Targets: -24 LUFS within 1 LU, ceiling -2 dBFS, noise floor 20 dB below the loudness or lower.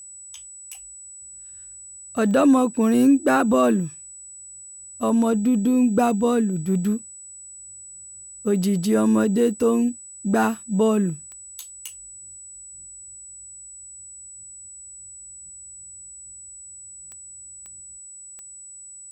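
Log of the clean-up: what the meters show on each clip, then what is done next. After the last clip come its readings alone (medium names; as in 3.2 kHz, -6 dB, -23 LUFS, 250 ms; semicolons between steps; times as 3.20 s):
clicks found 7; steady tone 7.9 kHz; tone level -39 dBFS; loudness -20.5 LUFS; peak level -7.5 dBFS; loudness target -24.0 LUFS
-> de-click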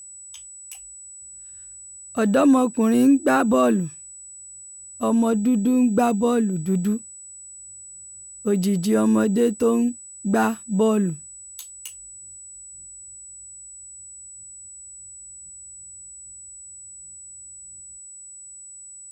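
clicks found 1; steady tone 7.9 kHz; tone level -39 dBFS
-> band-stop 7.9 kHz, Q 30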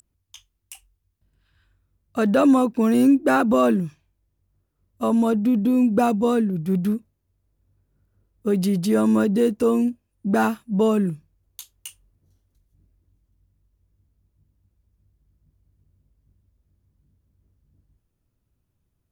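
steady tone not found; loudness -20.5 LUFS; peak level -7.5 dBFS; loudness target -24.0 LUFS
-> trim -3.5 dB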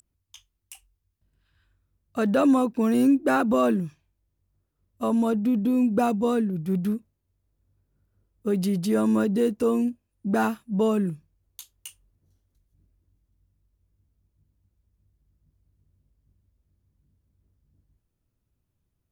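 loudness -24.0 LUFS; peak level -11.0 dBFS; noise floor -78 dBFS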